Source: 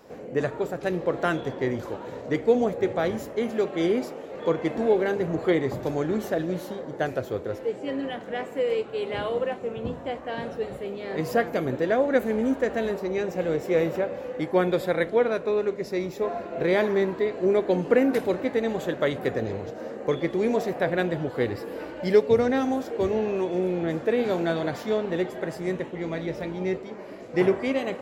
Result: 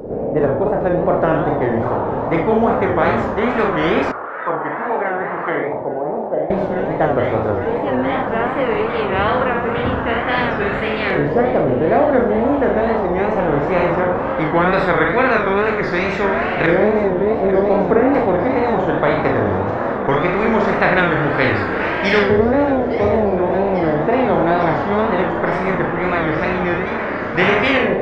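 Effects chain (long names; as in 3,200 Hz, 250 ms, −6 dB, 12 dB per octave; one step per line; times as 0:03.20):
auto-filter low-pass saw up 0.18 Hz 500–1,900 Hz
high-shelf EQ 3,000 Hz +7.5 dB
delay with a high-pass on its return 851 ms, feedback 84%, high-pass 2,900 Hz, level −15.5 dB
four-comb reverb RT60 0.44 s, combs from 26 ms, DRR 0.5 dB
0:04.12–0:06.50: envelope filter 750–1,500 Hz, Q 3.1, down, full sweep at −15.5 dBFS
low-shelf EQ 130 Hz +8.5 dB
hum removal 61.36 Hz, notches 2
tape wow and flutter 130 cents
every bin compressed towards the loudest bin 2 to 1
level −1.5 dB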